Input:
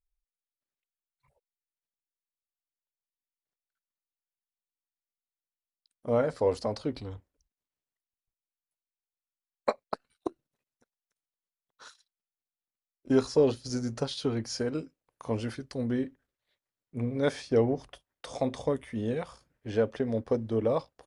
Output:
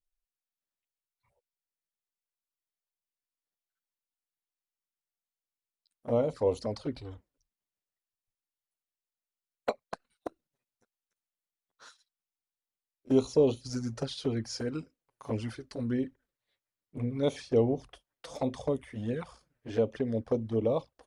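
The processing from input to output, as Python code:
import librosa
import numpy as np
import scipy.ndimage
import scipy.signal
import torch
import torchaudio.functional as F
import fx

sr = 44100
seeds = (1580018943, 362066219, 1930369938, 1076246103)

y = fx.env_flanger(x, sr, rest_ms=10.5, full_db=-24.5)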